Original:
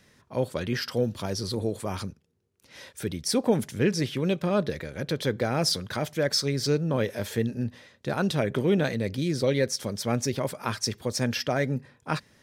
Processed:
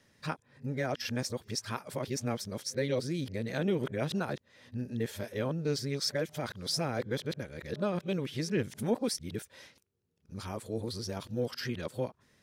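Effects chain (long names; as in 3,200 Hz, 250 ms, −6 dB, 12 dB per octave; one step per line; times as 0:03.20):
played backwards from end to start
level −7 dB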